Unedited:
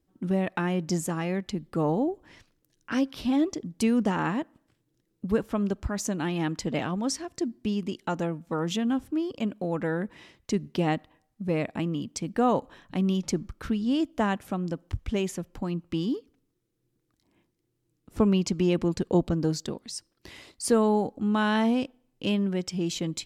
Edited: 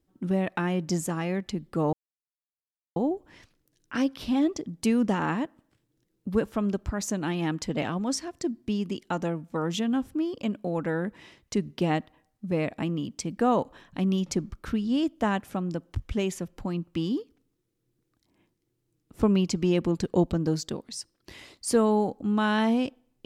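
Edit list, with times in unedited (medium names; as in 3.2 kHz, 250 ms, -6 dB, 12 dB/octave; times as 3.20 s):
1.93 s: insert silence 1.03 s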